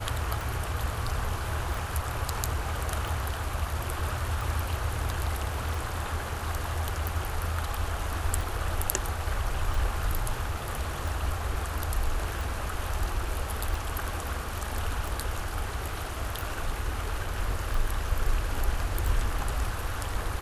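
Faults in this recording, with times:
tick 45 rpm

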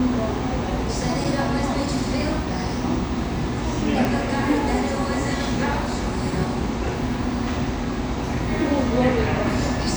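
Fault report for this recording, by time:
1.24–1.25 s: dropout 5.6 ms
4.05 s: pop

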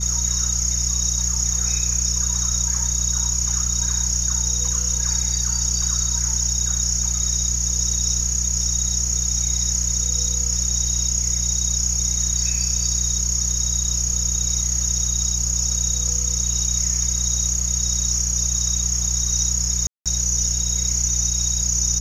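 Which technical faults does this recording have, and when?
hum 60 Hz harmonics 3 -26 dBFS
19.87–20.06 s: dropout 187 ms

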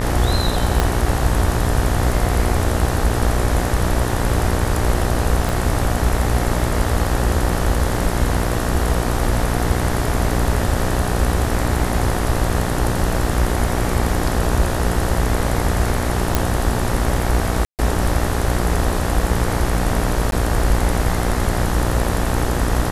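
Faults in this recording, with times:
buzz 60 Hz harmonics 32 -22 dBFS
0.80 s: pop -3 dBFS
5.49 s: pop
16.35 s: pop
17.65–17.79 s: dropout 138 ms
20.31–20.32 s: dropout 12 ms

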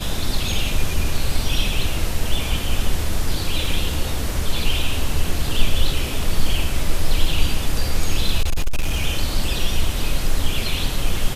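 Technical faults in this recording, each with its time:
8.41–9.04 s: clipped -14 dBFS

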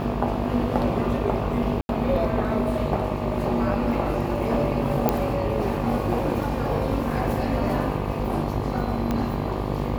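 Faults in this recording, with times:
buzz 50 Hz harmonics 24 -29 dBFS
1.81–1.89 s: dropout 81 ms
5.09 s: pop -6 dBFS
9.11 s: pop -12 dBFS

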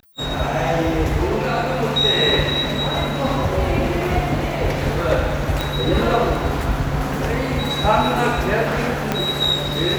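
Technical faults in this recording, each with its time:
5.61 s: pop -7 dBFS
9.12 s: pop -5 dBFS

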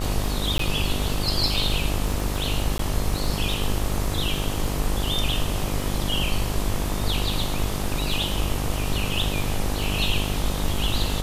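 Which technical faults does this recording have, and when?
buzz 50 Hz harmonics 26 -28 dBFS
crackle 18 per s -28 dBFS
0.58–0.59 s: dropout 13 ms
2.78–2.79 s: dropout 13 ms

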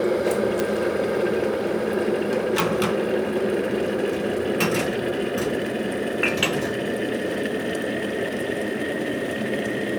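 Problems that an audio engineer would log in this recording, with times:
0.60 s: pop
2.60 s: pop

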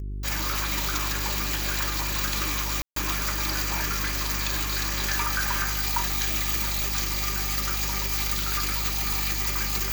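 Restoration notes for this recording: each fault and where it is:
hum 50 Hz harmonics 8 -32 dBFS
2.82–2.96 s: dropout 143 ms

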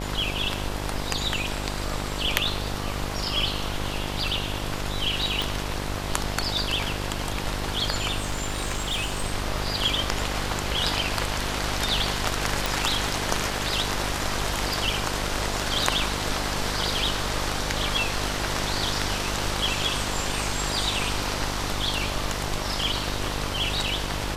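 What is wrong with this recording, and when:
buzz 50 Hz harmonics 22 -32 dBFS
5.42 s: pop
8.20–9.24 s: clipped -22.5 dBFS
12.66 s: pop

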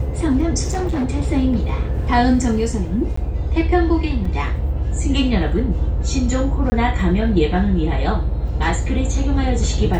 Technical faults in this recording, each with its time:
0.63–1.06 s: clipped -17 dBFS
3.16–3.17 s: dropout 14 ms
4.25 s: dropout 4 ms
6.70–6.72 s: dropout 20 ms

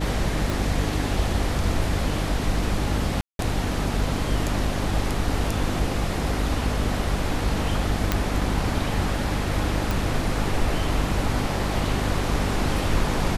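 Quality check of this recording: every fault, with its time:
hum 50 Hz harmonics 6 -28 dBFS
0.50 s: pop
3.21–3.39 s: dropout 182 ms
8.12 s: pop -6 dBFS
9.91 s: pop

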